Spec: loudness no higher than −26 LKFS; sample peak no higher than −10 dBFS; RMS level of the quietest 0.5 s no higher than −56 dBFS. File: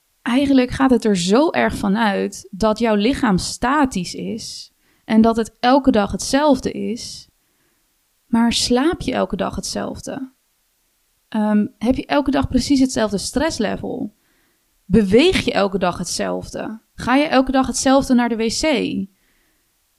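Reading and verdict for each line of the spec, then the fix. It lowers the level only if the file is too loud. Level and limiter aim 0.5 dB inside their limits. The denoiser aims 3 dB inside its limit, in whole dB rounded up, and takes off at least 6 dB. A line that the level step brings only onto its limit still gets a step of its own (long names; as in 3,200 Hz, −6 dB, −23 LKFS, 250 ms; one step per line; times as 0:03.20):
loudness −18.0 LKFS: out of spec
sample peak −2.5 dBFS: out of spec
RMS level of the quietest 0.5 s −64 dBFS: in spec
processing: level −8.5 dB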